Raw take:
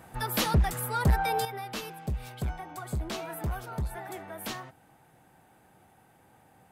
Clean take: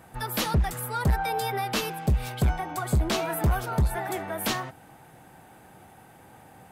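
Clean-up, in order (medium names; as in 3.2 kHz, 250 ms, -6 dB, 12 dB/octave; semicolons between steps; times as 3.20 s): gain correction +9 dB, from 1.45 s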